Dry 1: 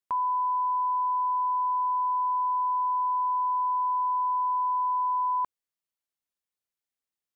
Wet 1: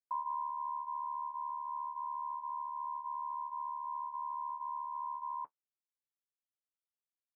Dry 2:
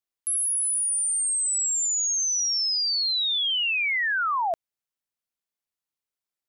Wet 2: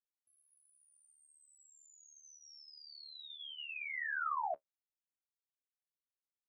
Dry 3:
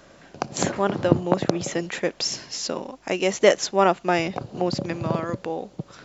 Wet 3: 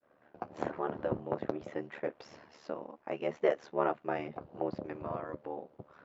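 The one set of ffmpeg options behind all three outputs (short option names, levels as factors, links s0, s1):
-af "highpass=f=470:p=1,agate=range=0.0224:threshold=0.00447:ratio=3:detection=peak,lowpass=1300,adynamicequalizer=threshold=0.0141:dfrequency=870:dqfactor=0.88:tfrequency=870:tqfactor=0.88:attack=5:release=100:ratio=0.375:range=2.5:mode=cutabove:tftype=bell,flanger=delay=6.9:depth=1.5:regen=-57:speed=0.92:shape=sinusoidal,aeval=exprs='val(0)*sin(2*PI*37*n/s)':c=same"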